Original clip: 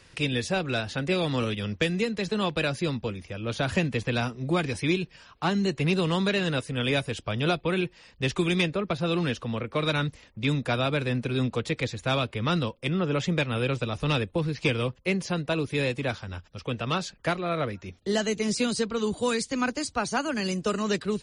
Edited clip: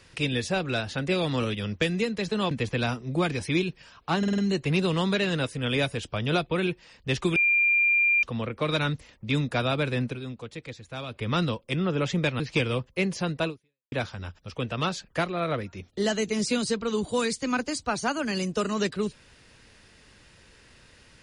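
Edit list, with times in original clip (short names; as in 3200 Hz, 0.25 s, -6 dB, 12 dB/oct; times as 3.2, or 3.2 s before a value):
2.51–3.85 cut
5.52 stutter 0.05 s, 5 plays
8.5–9.37 bleep 2390 Hz -18.5 dBFS
11.2–12.36 dip -10.5 dB, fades 0.14 s
13.54–14.49 cut
15.56–16.01 fade out exponential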